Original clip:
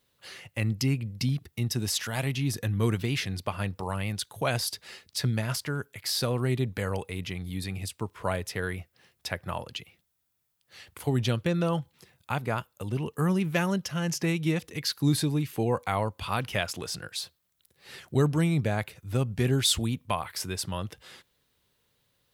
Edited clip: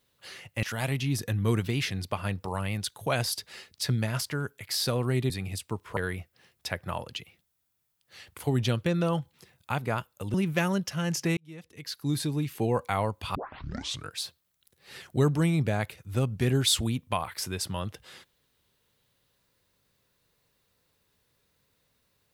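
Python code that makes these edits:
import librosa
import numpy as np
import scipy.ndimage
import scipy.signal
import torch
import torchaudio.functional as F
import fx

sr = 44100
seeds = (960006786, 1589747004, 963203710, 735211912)

y = fx.edit(x, sr, fx.cut(start_s=0.63, length_s=1.35),
    fx.cut(start_s=6.65, length_s=0.95),
    fx.cut(start_s=8.27, length_s=0.3),
    fx.cut(start_s=12.94, length_s=0.38),
    fx.fade_in_span(start_s=14.35, length_s=1.27),
    fx.tape_start(start_s=16.33, length_s=0.78), tone=tone)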